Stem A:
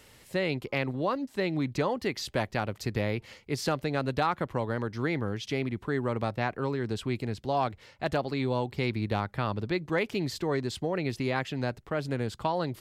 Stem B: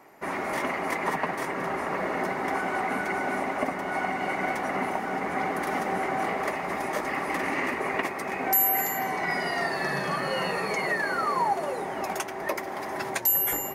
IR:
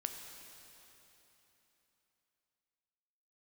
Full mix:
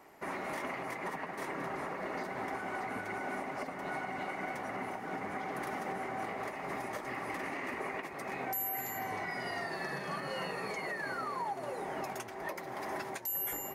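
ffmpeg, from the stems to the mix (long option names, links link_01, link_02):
-filter_complex "[0:a]volume=-17.5dB[link_01];[1:a]volume=-4.5dB[link_02];[link_01][link_02]amix=inputs=2:normalize=0,alimiter=level_in=4.5dB:limit=-24dB:level=0:latency=1:release=421,volume=-4.5dB"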